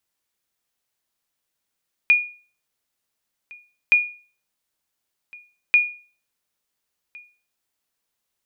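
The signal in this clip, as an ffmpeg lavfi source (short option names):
-f lavfi -i "aevalsrc='0.398*(sin(2*PI*2440*mod(t,1.82))*exp(-6.91*mod(t,1.82)/0.39)+0.0473*sin(2*PI*2440*max(mod(t,1.82)-1.41,0))*exp(-6.91*max(mod(t,1.82)-1.41,0)/0.39))':d=5.46:s=44100"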